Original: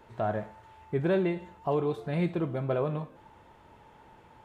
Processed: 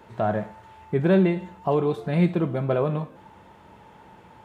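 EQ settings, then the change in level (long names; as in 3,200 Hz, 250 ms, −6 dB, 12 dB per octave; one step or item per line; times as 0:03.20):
high-pass filter 58 Hz
parametric band 190 Hz +8 dB 0.21 octaves
+5.5 dB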